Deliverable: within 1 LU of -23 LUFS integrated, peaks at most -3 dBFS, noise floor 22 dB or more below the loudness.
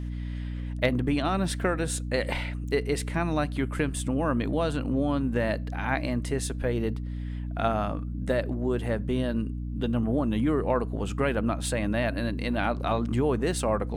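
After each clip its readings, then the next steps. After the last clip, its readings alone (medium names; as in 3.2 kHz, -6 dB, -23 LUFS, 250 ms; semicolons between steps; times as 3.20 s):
hum 60 Hz; highest harmonic 300 Hz; hum level -30 dBFS; loudness -28.5 LUFS; peak level -12.0 dBFS; loudness target -23.0 LUFS
-> de-hum 60 Hz, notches 5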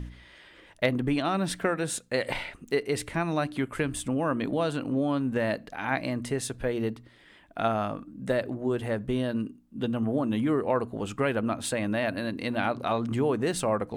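hum not found; loudness -29.0 LUFS; peak level -12.5 dBFS; loudness target -23.0 LUFS
-> trim +6 dB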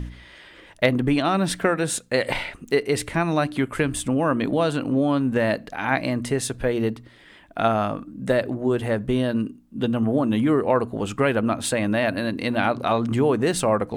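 loudness -23.0 LUFS; peak level -6.5 dBFS; noise floor -49 dBFS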